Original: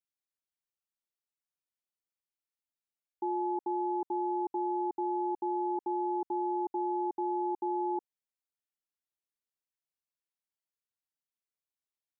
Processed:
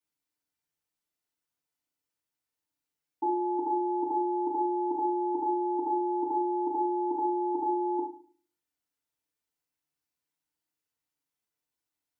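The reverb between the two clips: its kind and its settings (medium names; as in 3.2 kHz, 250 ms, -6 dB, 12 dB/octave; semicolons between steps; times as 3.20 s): FDN reverb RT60 0.42 s, low-frequency decay 1.4×, high-frequency decay 0.7×, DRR -6 dB; trim -1 dB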